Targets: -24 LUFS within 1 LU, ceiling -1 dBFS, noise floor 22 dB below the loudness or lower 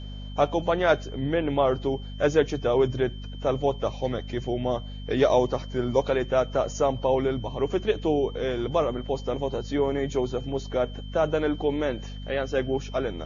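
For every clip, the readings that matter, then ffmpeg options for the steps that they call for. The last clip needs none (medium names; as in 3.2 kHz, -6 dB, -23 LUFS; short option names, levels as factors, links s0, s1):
hum 50 Hz; highest harmonic 250 Hz; hum level -34 dBFS; steady tone 3.1 kHz; tone level -47 dBFS; loudness -26.5 LUFS; peak level -8.0 dBFS; loudness target -24.0 LUFS
-> -af "bandreject=f=50:t=h:w=6,bandreject=f=100:t=h:w=6,bandreject=f=150:t=h:w=6,bandreject=f=200:t=h:w=6,bandreject=f=250:t=h:w=6"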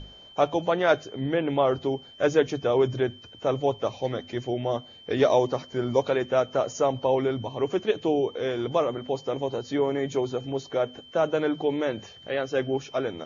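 hum not found; steady tone 3.1 kHz; tone level -47 dBFS
-> -af "bandreject=f=3100:w=30"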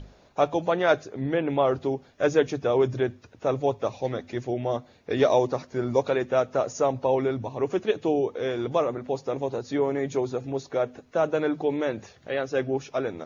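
steady tone not found; loudness -26.5 LUFS; peak level -8.0 dBFS; loudness target -24.0 LUFS
-> -af "volume=1.33"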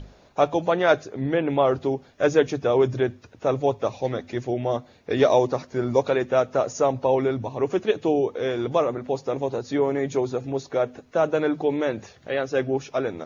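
loudness -24.0 LUFS; peak level -5.5 dBFS; noise floor -54 dBFS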